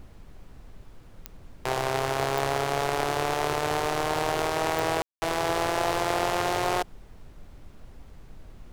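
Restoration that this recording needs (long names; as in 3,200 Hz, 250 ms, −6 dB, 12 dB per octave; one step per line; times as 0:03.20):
click removal
ambience match 0:05.02–0:05.22
noise reduction from a noise print 27 dB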